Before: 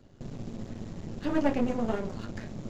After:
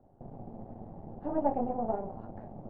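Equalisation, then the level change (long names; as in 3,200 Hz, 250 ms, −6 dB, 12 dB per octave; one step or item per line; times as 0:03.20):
low-pass with resonance 780 Hz, resonance Q 5.3
−7.5 dB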